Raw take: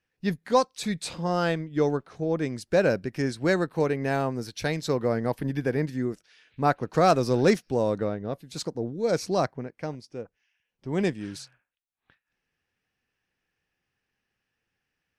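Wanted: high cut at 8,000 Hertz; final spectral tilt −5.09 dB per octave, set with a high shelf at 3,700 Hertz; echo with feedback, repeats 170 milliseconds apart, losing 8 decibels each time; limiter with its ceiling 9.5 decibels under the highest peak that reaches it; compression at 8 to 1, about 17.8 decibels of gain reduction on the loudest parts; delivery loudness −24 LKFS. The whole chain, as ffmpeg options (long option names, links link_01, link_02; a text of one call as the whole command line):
ffmpeg -i in.wav -af "lowpass=8000,highshelf=frequency=3700:gain=5.5,acompressor=threshold=-34dB:ratio=8,alimiter=level_in=8.5dB:limit=-24dB:level=0:latency=1,volume=-8.5dB,aecho=1:1:170|340|510|680|850:0.398|0.159|0.0637|0.0255|0.0102,volume=18dB" out.wav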